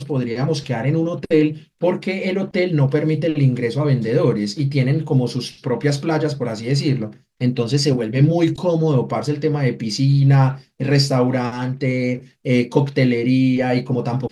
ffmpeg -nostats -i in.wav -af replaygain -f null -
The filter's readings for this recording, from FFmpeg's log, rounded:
track_gain = +0.1 dB
track_peak = 0.537